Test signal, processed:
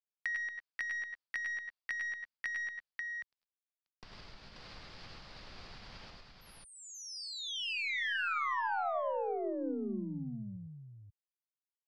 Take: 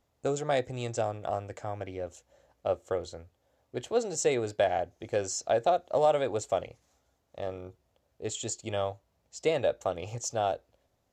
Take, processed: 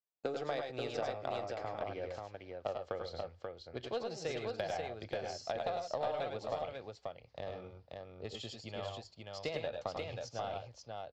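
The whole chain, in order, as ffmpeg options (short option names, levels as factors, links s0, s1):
-filter_complex "[0:a]agate=range=0.0224:threshold=0.00141:ratio=3:detection=peak,lowpass=f=4800:t=q:w=5.8,asubboost=boost=11.5:cutoff=95,acompressor=threshold=0.02:ratio=12,acrossover=split=190 3400:gain=0.126 1 0.178[s0][s1][s2];[s0][s1][s2]amix=inputs=3:normalize=0,aeval=exprs='0.0794*(cos(1*acos(clip(val(0)/0.0794,-1,1)))-cos(1*PI/2))+0.00126*(cos(4*acos(clip(val(0)/0.0794,-1,1)))-cos(4*PI/2))+0.00251*(cos(7*acos(clip(val(0)/0.0794,-1,1)))-cos(7*PI/2))':c=same,aecho=1:1:90|103|113|535:0.316|0.531|0.15|0.631,volume=1.12"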